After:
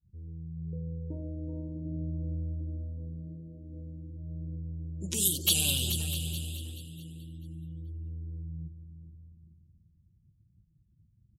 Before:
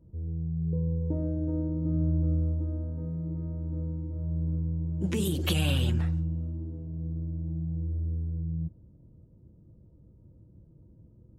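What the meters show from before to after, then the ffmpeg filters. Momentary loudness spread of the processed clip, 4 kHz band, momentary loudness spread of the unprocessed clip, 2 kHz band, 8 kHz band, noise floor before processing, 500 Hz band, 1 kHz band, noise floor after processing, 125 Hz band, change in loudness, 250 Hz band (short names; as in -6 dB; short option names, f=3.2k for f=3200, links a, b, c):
19 LU, +6.0 dB, 8 LU, -1.5 dB, +14.0 dB, -57 dBFS, -8.5 dB, -10.0 dB, -67 dBFS, -7.5 dB, -2.5 dB, -8.5 dB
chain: -filter_complex "[0:a]aexciter=amount=11.2:drive=3:freq=3.1k,asplit=2[a][b];[b]aecho=0:1:429|858|1287|1716:0.335|0.137|0.0563|0.0231[c];[a][c]amix=inputs=2:normalize=0,afftdn=nr=29:nf=-43,asplit=2[d][e];[e]aecho=0:1:653:0.168[f];[d][f]amix=inputs=2:normalize=0,volume=-9dB"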